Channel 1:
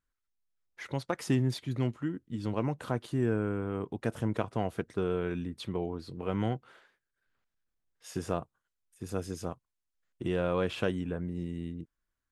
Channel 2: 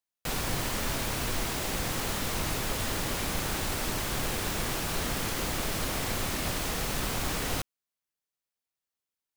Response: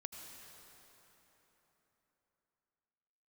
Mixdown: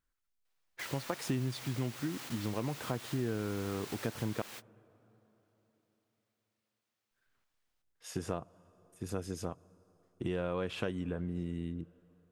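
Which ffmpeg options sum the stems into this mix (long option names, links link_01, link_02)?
-filter_complex "[0:a]volume=0dB,asplit=3[link_01][link_02][link_03];[link_01]atrim=end=4.42,asetpts=PTS-STARTPTS,afade=type=out:start_time=4.416:duration=0.004:curve=hsin[link_04];[link_02]atrim=start=4.42:end=7.11,asetpts=PTS-STARTPTS,volume=0[link_05];[link_03]atrim=start=7.11,asetpts=PTS-STARTPTS,afade=type=in:duration=0.004:curve=hsin[link_06];[link_04][link_05][link_06]concat=n=3:v=0:a=1,asplit=3[link_07][link_08][link_09];[link_08]volume=-19dB[link_10];[1:a]highpass=frequency=1300:poles=1,equalizer=frequency=11000:width_type=o:width=1.3:gain=-4,adelay=200,volume=-9dB[link_11];[link_09]apad=whole_len=421833[link_12];[link_11][link_12]sidechaingate=range=-43dB:threshold=-51dB:ratio=16:detection=peak[link_13];[2:a]atrim=start_sample=2205[link_14];[link_10][link_14]afir=irnorm=-1:irlink=0[link_15];[link_07][link_13][link_15]amix=inputs=3:normalize=0,acompressor=threshold=-33dB:ratio=2.5"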